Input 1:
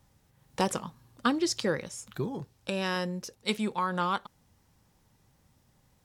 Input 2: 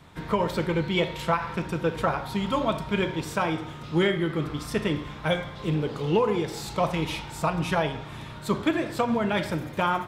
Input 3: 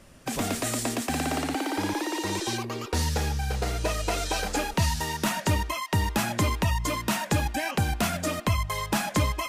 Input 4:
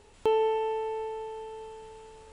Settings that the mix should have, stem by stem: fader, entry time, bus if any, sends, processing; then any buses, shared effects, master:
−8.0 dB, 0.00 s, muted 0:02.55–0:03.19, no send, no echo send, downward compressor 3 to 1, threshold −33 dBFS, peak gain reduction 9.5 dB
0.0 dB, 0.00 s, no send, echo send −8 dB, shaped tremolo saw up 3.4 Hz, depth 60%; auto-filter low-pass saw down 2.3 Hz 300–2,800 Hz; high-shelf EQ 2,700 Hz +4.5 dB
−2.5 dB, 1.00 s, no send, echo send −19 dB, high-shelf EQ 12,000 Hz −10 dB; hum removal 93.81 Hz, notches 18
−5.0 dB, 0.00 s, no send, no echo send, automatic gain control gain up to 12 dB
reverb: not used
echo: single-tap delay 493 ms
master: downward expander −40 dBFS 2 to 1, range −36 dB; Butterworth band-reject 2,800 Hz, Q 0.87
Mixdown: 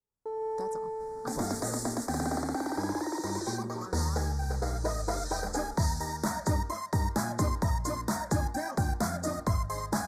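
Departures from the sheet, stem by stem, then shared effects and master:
stem 2: muted
stem 4 −5.0 dB → −14.5 dB

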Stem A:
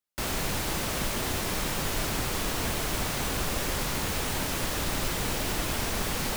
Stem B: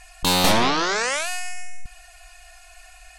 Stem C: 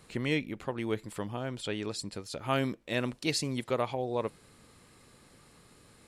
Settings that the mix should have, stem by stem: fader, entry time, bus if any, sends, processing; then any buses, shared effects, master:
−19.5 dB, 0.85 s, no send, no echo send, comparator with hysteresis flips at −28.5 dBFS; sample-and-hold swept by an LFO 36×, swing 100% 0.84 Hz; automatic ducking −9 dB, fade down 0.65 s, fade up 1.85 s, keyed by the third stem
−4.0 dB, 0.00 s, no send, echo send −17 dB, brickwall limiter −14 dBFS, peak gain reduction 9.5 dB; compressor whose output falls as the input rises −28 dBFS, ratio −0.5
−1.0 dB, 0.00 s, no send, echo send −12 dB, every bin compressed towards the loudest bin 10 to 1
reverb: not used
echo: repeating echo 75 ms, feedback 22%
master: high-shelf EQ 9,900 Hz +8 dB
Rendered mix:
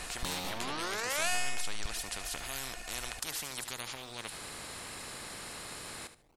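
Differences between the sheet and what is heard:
stem A −19.5 dB → −29.0 dB
master: missing high-shelf EQ 9,900 Hz +8 dB

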